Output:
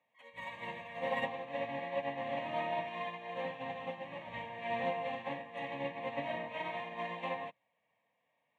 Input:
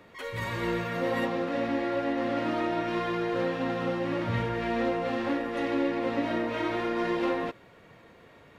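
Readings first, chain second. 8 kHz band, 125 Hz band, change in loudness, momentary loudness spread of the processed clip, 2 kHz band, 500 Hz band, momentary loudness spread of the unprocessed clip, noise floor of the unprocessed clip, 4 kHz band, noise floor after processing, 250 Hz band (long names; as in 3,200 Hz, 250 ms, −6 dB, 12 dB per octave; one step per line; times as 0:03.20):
can't be measured, −15.0 dB, −9.5 dB, 8 LU, −7.0 dB, −9.5 dB, 2 LU, −55 dBFS, −7.5 dB, −81 dBFS, −18.5 dB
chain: sub-octave generator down 1 octave, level 0 dB
band-pass filter 340–6,400 Hz
phaser with its sweep stopped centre 1,400 Hz, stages 6
expander for the loud parts 2.5 to 1, over −46 dBFS
level +1 dB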